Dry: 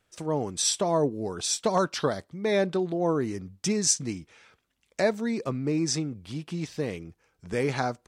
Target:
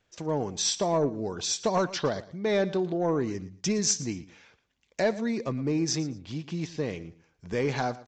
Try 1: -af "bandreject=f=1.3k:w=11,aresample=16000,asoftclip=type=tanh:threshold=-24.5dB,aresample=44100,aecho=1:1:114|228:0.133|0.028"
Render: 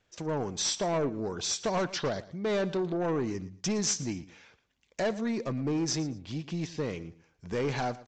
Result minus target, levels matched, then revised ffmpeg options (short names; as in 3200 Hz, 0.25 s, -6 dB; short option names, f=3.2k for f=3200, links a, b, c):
soft clip: distortion +11 dB
-af "bandreject=f=1.3k:w=11,aresample=16000,asoftclip=type=tanh:threshold=-15.5dB,aresample=44100,aecho=1:1:114|228:0.133|0.028"